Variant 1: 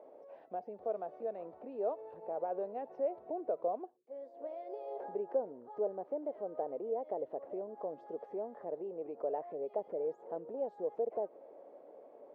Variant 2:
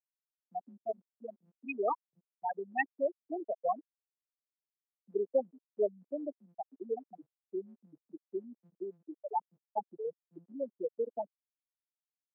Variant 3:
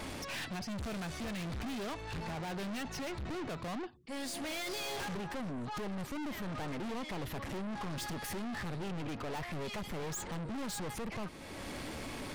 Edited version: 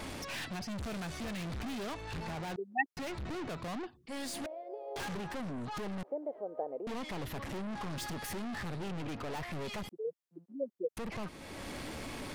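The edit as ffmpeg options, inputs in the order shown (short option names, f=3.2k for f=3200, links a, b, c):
-filter_complex "[1:a]asplit=2[a][b];[0:a]asplit=2[c][d];[2:a]asplit=5[e][f][g][h][i];[e]atrim=end=2.562[j];[a]atrim=start=2.558:end=2.972[k];[f]atrim=start=2.968:end=4.462[l];[c]atrim=start=4.458:end=4.962[m];[g]atrim=start=4.958:end=6.032[n];[d]atrim=start=6.028:end=6.872[o];[h]atrim=start=6.868:end=9.892[p];[b]atrim=start=9.888:end=10.972[q];[i]atrim=start=10.968[r];[j][k]acrossfade=d=0.004:c1=hsin:c2=hsin[s];[s][l]acrossfade=d=0.004:c1=hsin:c2=hsin[t];[t][m]acrossfade=d=0.004:c1=hsin:c2=hsin[u];[u][n]acrossfade=d=0.004:c1=hsin:c2=hsin[v];[v][o]acrossfade=d=0.004:c1=hsin:c2=hsin[w];[w][p]acrossfade=d=0.004:c1=hsin:c2=hsin[x];[x][q]acrossfade=d=0.004:c1=hsin:c2=hsin[y];[y][r]acrossfade=d=0.004:c1=hsin:c2=hsin"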